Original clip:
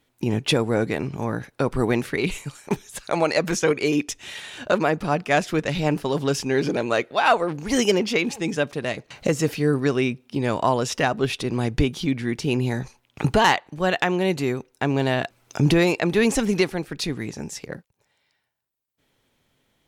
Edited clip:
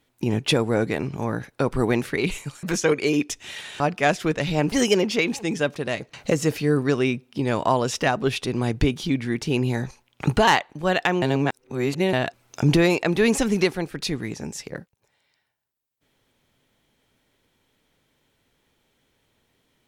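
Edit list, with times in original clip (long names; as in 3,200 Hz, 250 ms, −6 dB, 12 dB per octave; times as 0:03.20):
0:02.63–0:03.42: remove
0:04.59–0:05.08: remove
0:06.00–0:07.69: remove
0:14.19–0:15.10: reverse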